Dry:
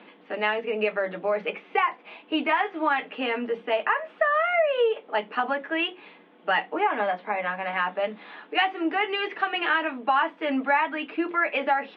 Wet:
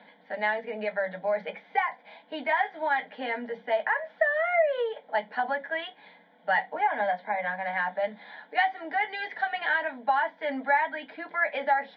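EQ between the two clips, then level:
phaser with its sweep stopped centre 1,800 Hz, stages 8
0.0 dB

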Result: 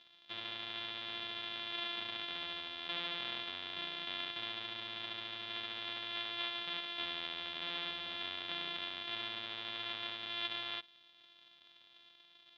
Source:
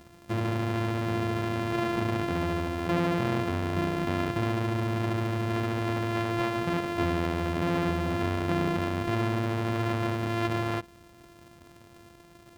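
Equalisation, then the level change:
resonant band-pass 3,500 Hz, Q 8.6
high-frequency loss of the air 200 metres
+14.5 dB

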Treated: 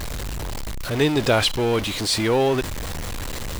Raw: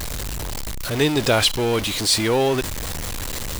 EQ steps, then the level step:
high-shelf EQ 4,300 Hz −7 dB
0.0 dB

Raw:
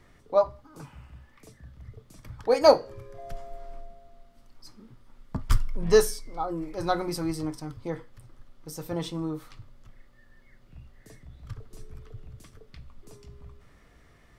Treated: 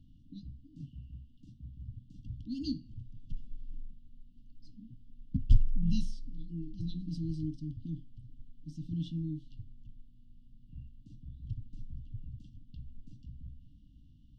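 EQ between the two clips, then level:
linear-phase brick-wall band-stop 310–2,700 Hz
head-to-tape spacing loss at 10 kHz 36 dB
+1.0 dB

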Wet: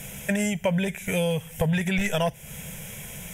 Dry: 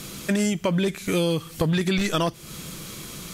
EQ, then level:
phaser with its sweep stopped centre 1,200 Hz, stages 6
+2.5 dB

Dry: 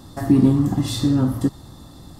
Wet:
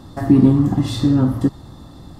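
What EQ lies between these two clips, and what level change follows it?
high-shelf EQ 5,100 Hz −11 dB
+3.0 dB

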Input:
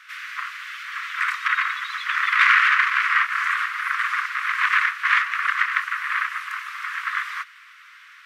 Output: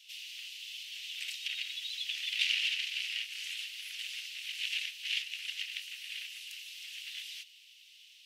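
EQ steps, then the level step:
Chebyshev high-pass filter 2,800 Hz, order 5
0.0 dB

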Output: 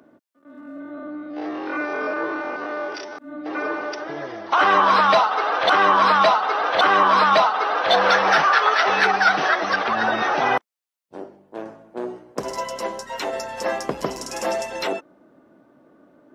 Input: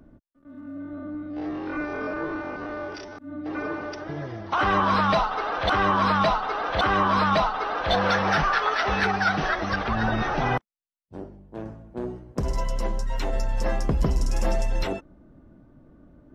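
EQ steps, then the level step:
high-pass filter 390 Hz 12 dB per octave
+6.5 dB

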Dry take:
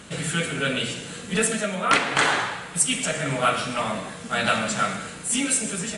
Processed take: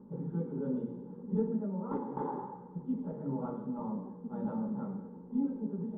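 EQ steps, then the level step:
formant resonators in series u
mains-hum notches 50/100/150 Hz
phaser with its sweep stopped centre 460 Hz, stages 8
+6.5 dB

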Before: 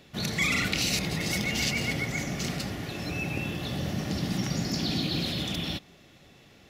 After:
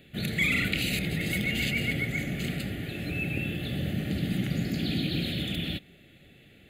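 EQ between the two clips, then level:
phaser with its sweep stopped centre 2,400 Hz, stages 4
+1.5 dB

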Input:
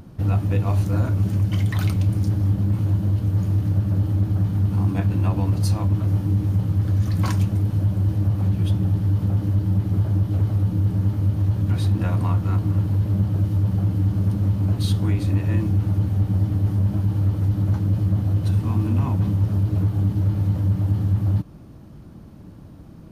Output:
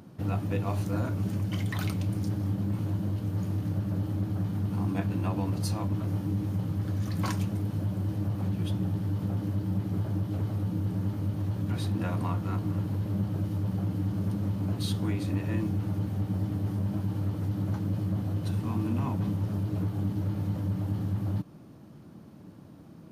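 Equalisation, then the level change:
high-pass filter 140 Hz 12 dB per octave
−4.0 dB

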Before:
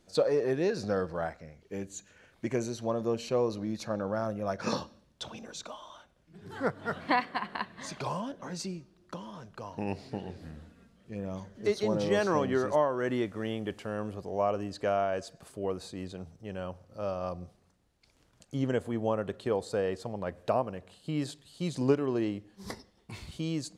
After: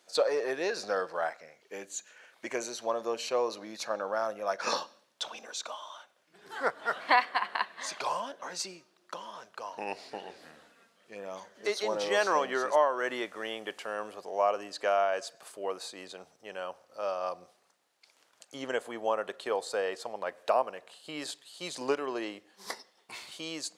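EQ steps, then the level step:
high-pass filter 660 Hz 12 dB per octave
+5.0 dB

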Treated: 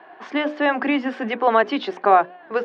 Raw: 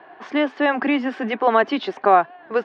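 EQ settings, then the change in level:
high-pass filter 160 Hz
mains-hum notches 60/120/180/240/300/360/420/480/540/600 Hz
0.0 dB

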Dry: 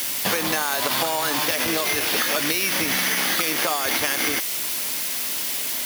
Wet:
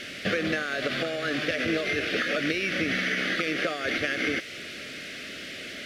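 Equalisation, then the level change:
Butterworth band-reject 930 Hz, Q 1.2
low-pass filter 2,400 Hz 12 dB per octave
0.0 dB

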